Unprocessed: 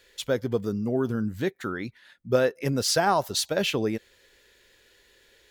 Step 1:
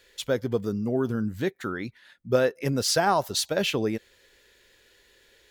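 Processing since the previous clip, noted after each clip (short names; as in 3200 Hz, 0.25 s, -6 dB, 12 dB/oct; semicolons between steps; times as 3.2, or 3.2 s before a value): nothing audible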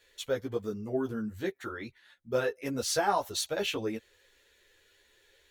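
bell 190 Hz -7 dB 0.87 oct; notch 4900 Hz, Q 11; ensemble effect; gain -2 dB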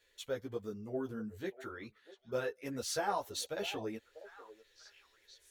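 delay with a stepping band-pass 0.644 s, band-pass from 600 Hz, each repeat 1.4 oct, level -11.5 dB; gain -7 dB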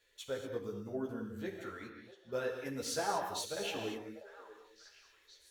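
reverb, pre-delay 3 ms, DRR 3 dB; gain -1.5 dB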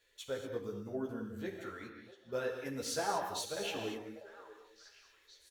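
outdoor echo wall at 66 m, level -27 dB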